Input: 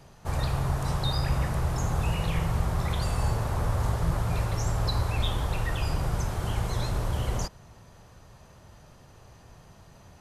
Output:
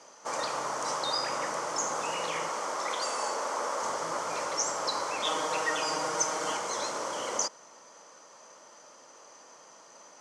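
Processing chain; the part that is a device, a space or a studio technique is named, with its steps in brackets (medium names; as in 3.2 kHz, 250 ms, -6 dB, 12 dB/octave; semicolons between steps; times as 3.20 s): phone speaker on a table (cabinet simulation 360–8000 Hz, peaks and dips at 390 Hz -10 dB, 730 Hz -8 dB, 1.7 kHz -6 dB, 2.6 kHz -7 dB, 3.8 kHz -9 dB, 6.1 kHz +6 dB); 2.49–3.83 s: high-pass 250 Hz 12 dB/octave; 5.24–6.57 s: comb 6.4 ms, depth 95%; trim +7 dB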